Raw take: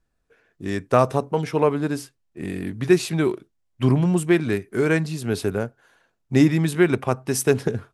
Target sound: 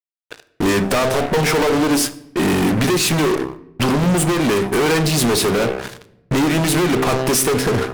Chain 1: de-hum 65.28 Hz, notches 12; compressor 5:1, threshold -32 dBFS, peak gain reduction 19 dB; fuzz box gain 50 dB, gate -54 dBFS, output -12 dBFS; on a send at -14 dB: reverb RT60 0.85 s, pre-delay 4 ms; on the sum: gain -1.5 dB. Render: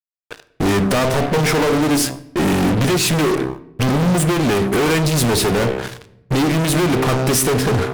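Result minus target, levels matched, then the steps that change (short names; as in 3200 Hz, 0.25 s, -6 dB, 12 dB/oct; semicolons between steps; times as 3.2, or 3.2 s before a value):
125 Hz band +3.0 dB
add after compressor: low shelf 150 Hz -10.5 dB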